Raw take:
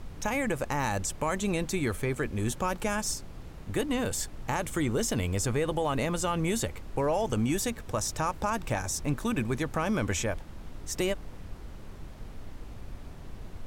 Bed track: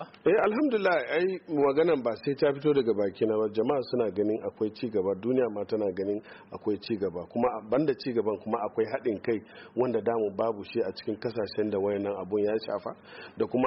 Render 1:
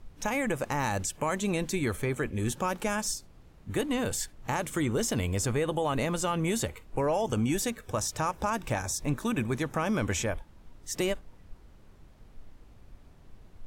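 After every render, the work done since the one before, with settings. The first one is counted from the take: noise print and reduce 11 dB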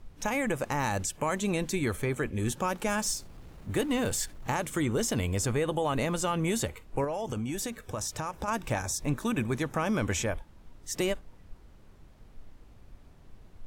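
2.88–4.52 G.711 law mismatch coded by mu; 7.04–8.48 compressor, threshold -29 dBFS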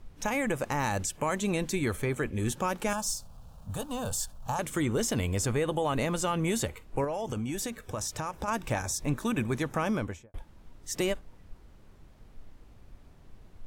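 2.93–4.59 fixed phaser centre 850 Hz, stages 4; 9.84–10.34 studio fade out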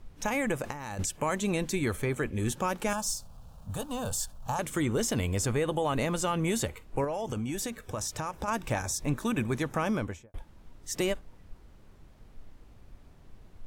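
0.62–1.07 negative-ratio compressor -34 dBFS, ratio -0.5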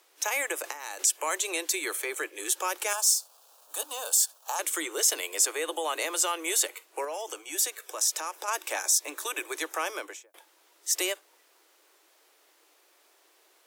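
steep high-pass 310 Hz 96 dB/oct; tilt +3.5 dB/oct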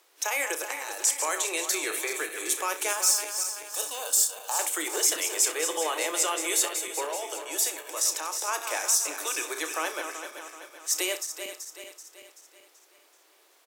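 regenerating reverse delay 0.191 s, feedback 69%, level -8 dB; on a send: early reflections 32 ms -11.5 dB, 64 ms -16.5 dB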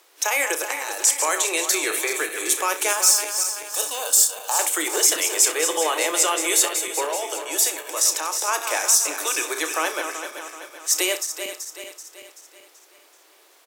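gain +6.5 dB; limiter -3 dBFS, peak gain reduction 1 dB

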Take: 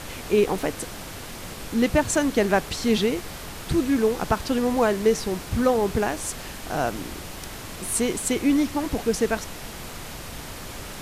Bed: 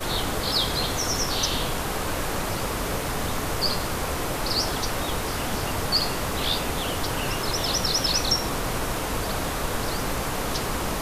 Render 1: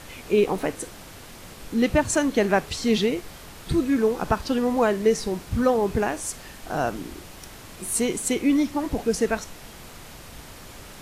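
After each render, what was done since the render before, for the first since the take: noise print and reduce 6 dB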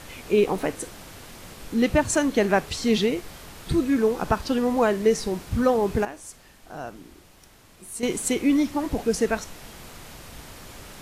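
6.05–8.03 gain -10.5 dB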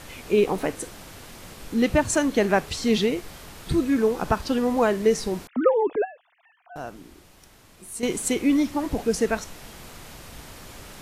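5.47–6.76 sine-wave speech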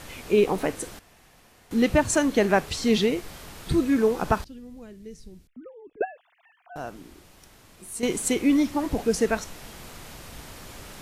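0.99–1.71 room tone; 4.44–6.01 passive tone stack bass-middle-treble 10-0-1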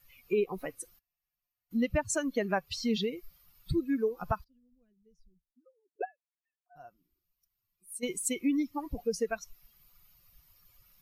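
per-bin expansion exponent 2; compressor 2:1, threshold -30 dBFS, peak gain reduction 7.5 dB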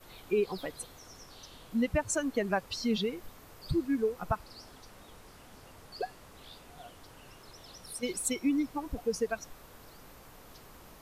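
add bed -26 dB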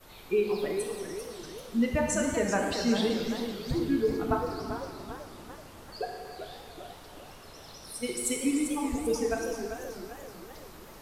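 plate-style reverb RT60 2.1 s, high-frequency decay 0.9×, DRR 0.5 dB; warbling echo 0.388 s, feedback 50%, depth 191 cents, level -8.5 dB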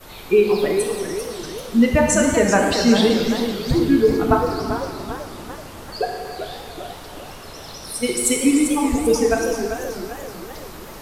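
gain +11.5 dB

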